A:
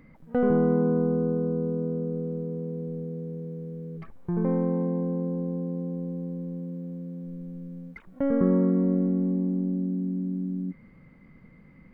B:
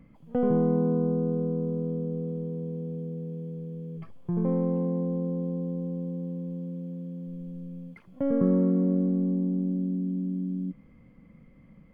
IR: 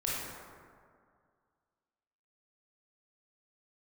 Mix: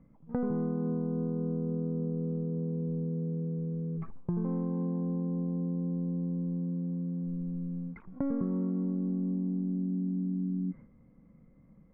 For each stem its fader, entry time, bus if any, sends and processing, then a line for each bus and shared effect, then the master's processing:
0.0 dB, 0.00 s, no send, phase distortion by the signal itself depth 0.052 ms; noise gate with hold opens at −39 dBFS
−5.0 dB, 0.00 s, no send, no processing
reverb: not used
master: low-pass filter 1,300 Hz 12 dB per octave; downward compressor 6 to 1, threshold −29 dBFS, peak gain reduction 13 dB

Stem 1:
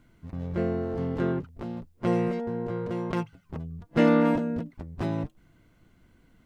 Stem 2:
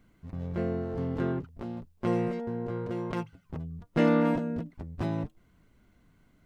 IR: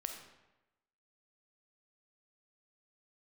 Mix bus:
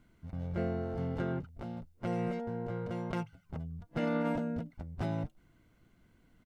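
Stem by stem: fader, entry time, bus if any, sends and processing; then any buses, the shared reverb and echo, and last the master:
−5.5 dB, 0.00 s, no send, no processing
−11.5 dB, 1.4 ms, no send, no processing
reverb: not used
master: brickwall limiter −23.5 dBFS, peak gain reduction 8.5 dB

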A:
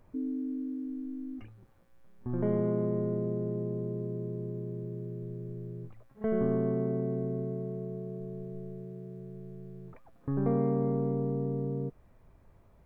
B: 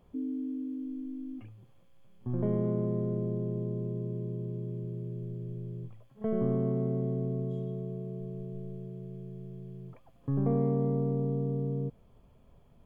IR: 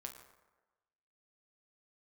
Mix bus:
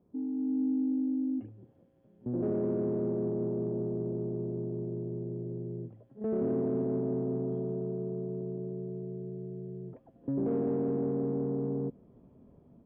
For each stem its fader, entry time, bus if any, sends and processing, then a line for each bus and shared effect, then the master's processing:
−7.0 dB, 0.00 s, no send, no processing
+2.0 dB, 0.00 s, polarity flipped, no send, soft clipping −31 dBFS, distortion −9 dB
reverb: not used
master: automatic gain control gain up to 9 dB; soft clipping −20 dBFS, distortion −17 dB; resonant band-pass 270 Hz, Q 1.6

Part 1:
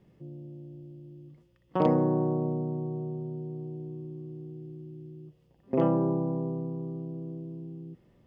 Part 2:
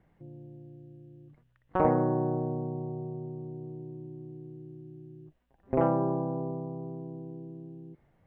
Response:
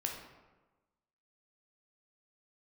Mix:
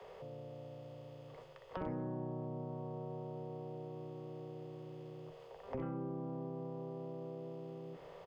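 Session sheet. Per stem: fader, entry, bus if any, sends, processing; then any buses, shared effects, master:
−1.0 dB, 0.00 s, no send, compressor on every frequency bin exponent 0.6; Butterworth high-pass 400 Hz 96 dB per octave; downward compressor, threshold −35 dBFS, peak gain reduction 13.5 dB
−1.5 dB, 16 ms, send −10.5 dB, parametric band 750 Hz −13.5 dB 1.8 octaves; mains-hum notches 50/100/150 Hz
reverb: on, RT60 1.2 s, pre-delay 10 ms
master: downward compressor 2 to 1, threshold −46 dBFS, peak gain reduction 11.5 dB

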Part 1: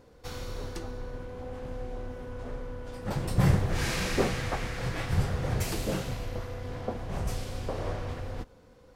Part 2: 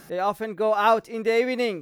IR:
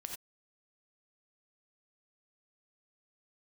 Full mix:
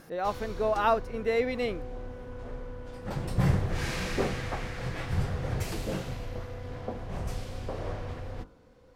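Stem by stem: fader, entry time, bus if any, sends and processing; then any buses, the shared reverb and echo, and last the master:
−1.5 dB, 0.00 s, no send, hum removal 50.84 Hz, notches 29
−5.5 dB, 0.00 s, no send, no processing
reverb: not used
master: high-shelf EQ 4,900 Hz −5.5 dB

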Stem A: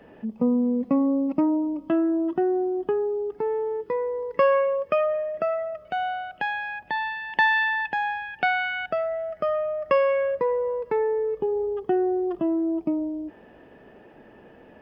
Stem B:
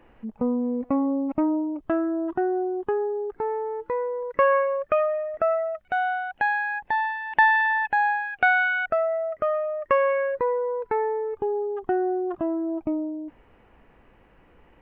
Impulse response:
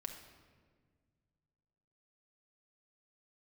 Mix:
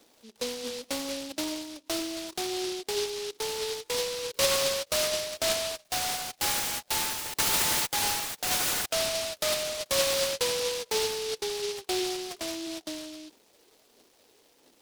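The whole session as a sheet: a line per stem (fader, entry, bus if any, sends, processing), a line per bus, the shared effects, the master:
−17.0 dB, 0.00 s, no send, phase shifter 1.5 Hz, delay 2.7 ms, feedback 65%
−3.0 dB, 0.00 s, no send, high-pass filter 530 Hz 6 dB per octave; brickwall limiter −18 dBFS, peak gain reduction 9.5 dB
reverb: not used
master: high-pass filter 240 Hz 24 dB per octave; short delay modulated by noise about 4,000 Hz, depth 0.22 ms

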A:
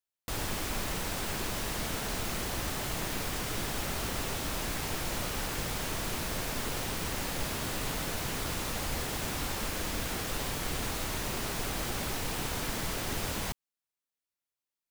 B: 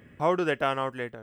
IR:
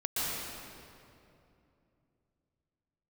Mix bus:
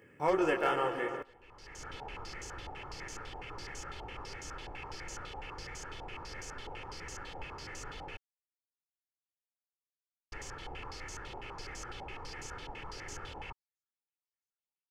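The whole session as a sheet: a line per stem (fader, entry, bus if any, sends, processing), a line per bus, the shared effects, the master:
−13.0 dB, 0.00 s, muted 0:08.17–0:10.32, no send, no echo send, low-pass on a step sequencer 12 Hz 820–6,500 Hz; automatic ducking −22 dB, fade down 1.05 s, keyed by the second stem
−3.0 dB, 0.00 s, send −13.5 dB, echo send −20 dB, chorus effect 2.4 Hz, delay 20 ms, depth 7.9 ms; high-pass filter 160 Hz; gain into a clipping stage and back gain 18.5 dB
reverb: on, RT60 2.7 s, pre-delay 113 ms
echo: repeating echo 143 ms, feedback 49%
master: parametric band 3,800 Hz −12.5 dB 0.24 octaves; comb filter 2.3 ms, depth 55%

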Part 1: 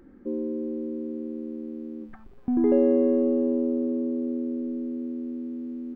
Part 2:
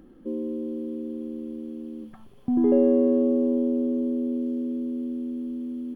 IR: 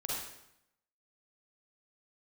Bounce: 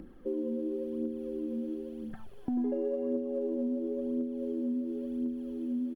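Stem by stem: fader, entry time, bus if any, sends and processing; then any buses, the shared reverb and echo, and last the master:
−4.0 dB, 0.00 s, no send, elliptic high-pass filter 400 Hz
−3.0 dB, 0.4 ms, no send, phase shifter 0.95 Hz, delay 4.3 ms, feedback 64%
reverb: not used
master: downward compressor 6 to 1, threshold −30 dBFS, peak gain reduction 16 dB

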